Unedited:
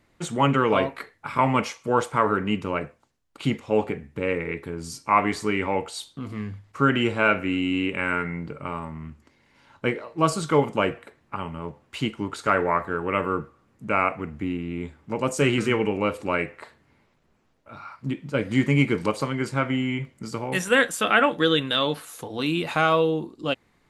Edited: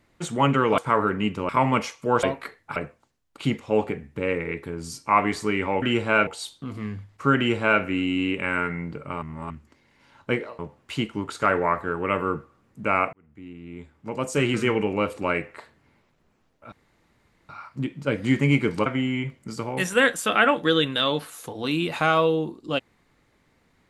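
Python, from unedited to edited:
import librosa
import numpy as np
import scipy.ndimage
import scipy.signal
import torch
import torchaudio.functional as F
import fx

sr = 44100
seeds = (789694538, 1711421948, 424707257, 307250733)

y = fx.edit(x, sr, fx.swap(start_s=0.78, length_s=0.53, other_s=2.05, other_length_s=0.71),
    fx.duplicate(start_s=6.92, length_s=0.45, to_s=5.82),
    fx.reverse_span(start_s=8.77, length_s=0.28),
    fx.cut(start_s=10.14, length_s=1.49),
    fx.fade_in_span(start_s=14.17, length_s=1.54),
    fx.insert_room_tone(at_s=17.76, length_s=0.77),
    fx.cut(start_s=19.13, length_s=0.48), tone=tone)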